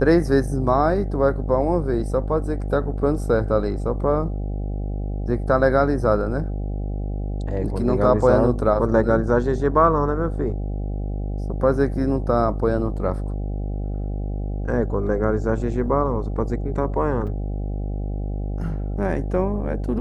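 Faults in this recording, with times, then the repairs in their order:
buzz 50 Hz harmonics 16 -26 dBFS
17.27 s: dropout 4.9 ms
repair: de-hum 50 Hz, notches 16; interpolate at 17.27 s, 4.9 ms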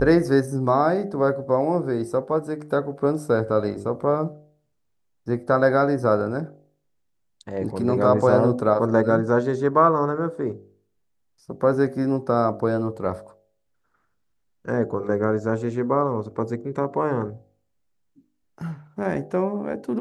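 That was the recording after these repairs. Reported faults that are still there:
nothing left

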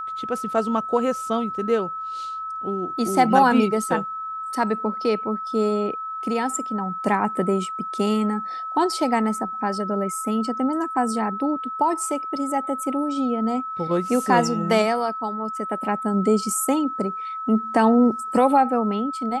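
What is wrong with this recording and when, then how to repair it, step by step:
whine 1.3 kHz -28 dBFS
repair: band-stop 1.3 kHz, Q 30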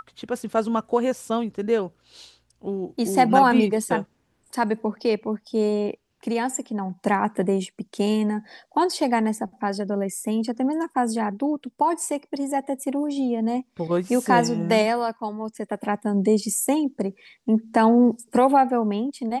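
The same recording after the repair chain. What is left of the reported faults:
nothing left

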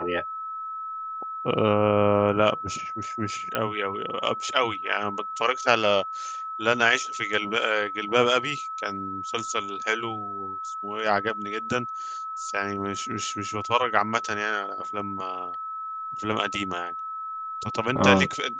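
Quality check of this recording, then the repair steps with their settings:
whine 1.3 kHz -31 dBFS
3.55 s: pop -11 dBFS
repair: de-click; band-stop 1.3 kHz, Q 30

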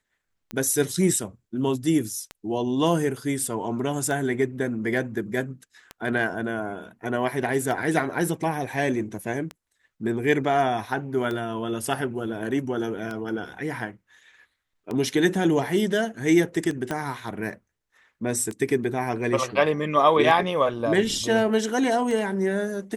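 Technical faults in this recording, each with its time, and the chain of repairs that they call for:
tick 33 1/3 rpm -18 dBFS
16.91 s: pop -14 dBFS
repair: de-click

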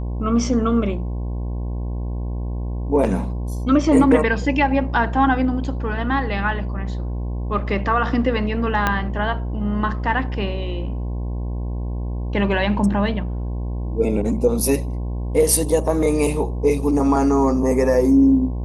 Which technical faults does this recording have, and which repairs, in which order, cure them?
buzz 60 Hz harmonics 18 -25 dBFS
8.87 s: pop -5 dBFS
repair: de-click; de-hum 60 Hz, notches 18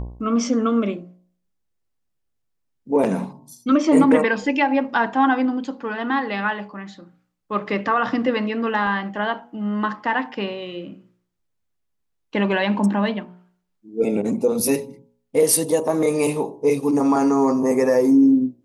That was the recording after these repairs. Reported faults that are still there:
8.87 s: pop

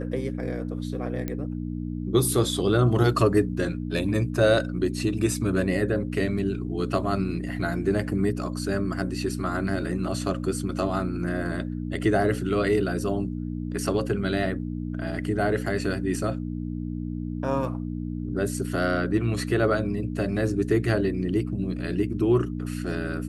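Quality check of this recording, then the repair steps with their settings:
hum 60 Hz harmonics 5 -31 dBFS
1.28 s: pop -16 dBFS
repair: de-click; de-hum 60 Hz, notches 5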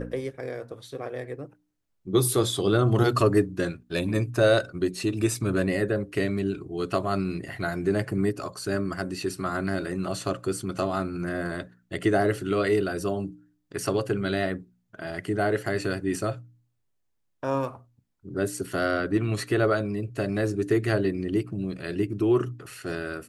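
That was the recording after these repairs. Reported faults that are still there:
nothing left

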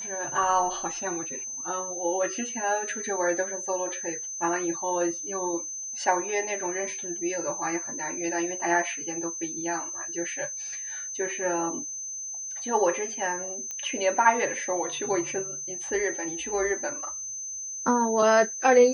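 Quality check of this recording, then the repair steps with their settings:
whine 6.2 kHz -33 dBFS
13.71 s: pop -21 dBFS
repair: de-click; band-stop 6.2 kHz, Q 30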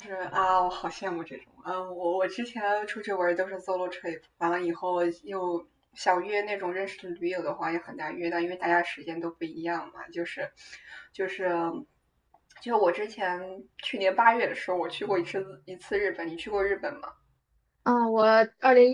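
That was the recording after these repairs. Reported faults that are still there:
nothing left

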